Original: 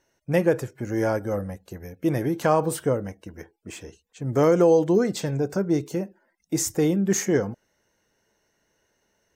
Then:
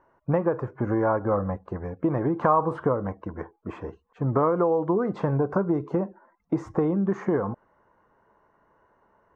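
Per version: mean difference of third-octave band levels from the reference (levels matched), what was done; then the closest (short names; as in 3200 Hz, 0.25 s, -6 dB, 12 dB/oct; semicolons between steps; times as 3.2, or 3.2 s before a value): 7.5 dB: compressor 12:1, threshold -26 dBFS, peak gain reduction 13 dB; synth low-pass 1100 Hz, resonance Q 4.9; gain +5 dB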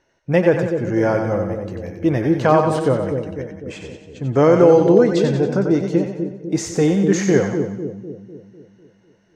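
5.5 dB: LPF 4400 Hz 12 dB/oct; split-band echo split 530 Hz, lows 0.25 s, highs 92 ms, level -5.5 dB; gain +5.5 dB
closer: second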